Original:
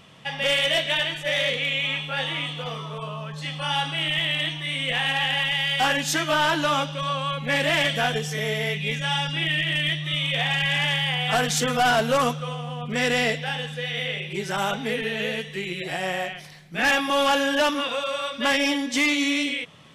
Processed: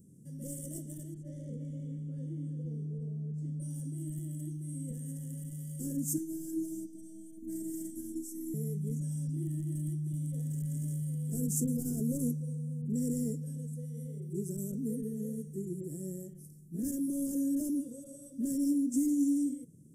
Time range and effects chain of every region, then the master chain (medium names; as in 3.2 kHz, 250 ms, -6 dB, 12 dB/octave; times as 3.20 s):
1.14–3.60 s: low-pass 3.8 kHz + delay 338 ms -9 dB
6.18–8.54 s: Chebyshev band-stop 530–1600 Hz, order 3 + robot voice 321 Hz
whole clip: inverse Chebyshev band-stop 740–4100 Hz, stop band 50 dB; bass shelf 120 Hz -8 dB